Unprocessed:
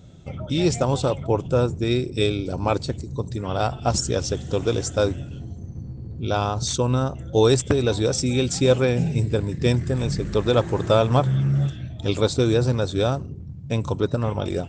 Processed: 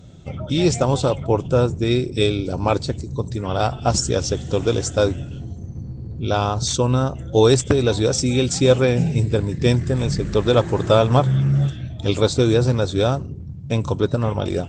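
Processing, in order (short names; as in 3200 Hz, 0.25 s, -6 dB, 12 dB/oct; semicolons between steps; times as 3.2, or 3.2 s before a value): gain +3 dB; Vorbis 64 kbps 44100 Hz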